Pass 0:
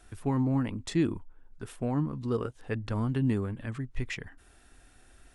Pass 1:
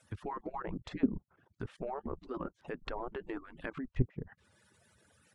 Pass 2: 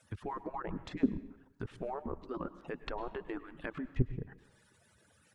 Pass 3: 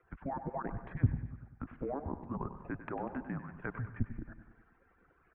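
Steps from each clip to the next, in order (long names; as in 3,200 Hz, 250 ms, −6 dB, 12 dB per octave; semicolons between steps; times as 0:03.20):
harmonic-percussive split with one part muted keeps percussive; output level in coarse steps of 15 dB; treble cut that deepens with the level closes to 450 Hz, closed at −39 dBFS; level +7.5 dB
dense smooth reverb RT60 0.74 s, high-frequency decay 0.9×, pre-delay 90 ms, DRR 14.5 dB
on a send: repeating echo 97 ms, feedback 57%, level −12 dB; on the sum: single-sideband voice off tune −150 Hz 160–2,200 Hz; level +1.5 dB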